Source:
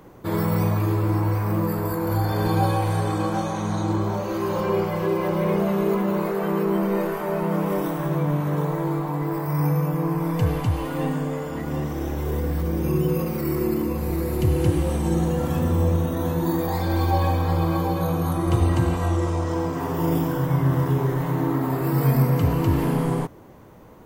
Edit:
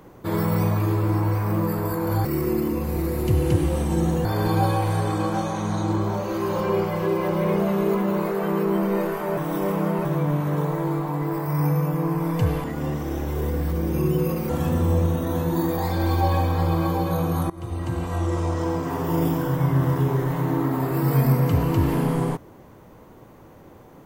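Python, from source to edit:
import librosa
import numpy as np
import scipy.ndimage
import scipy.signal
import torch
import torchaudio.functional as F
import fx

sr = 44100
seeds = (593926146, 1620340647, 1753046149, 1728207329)

y = fx.edit(x, sr, fx.reverse_span(start_s=7.37, length_s=0.68),
    fx.cut(start_s=10.64, length_s=0.9),
    fx.move(start_s=13.39, length_s=2.0, to_s=2.25),
    fx.fade_in_from(start_s=18.4, length_s=0.96, floor_db=-20.5), tone=tone)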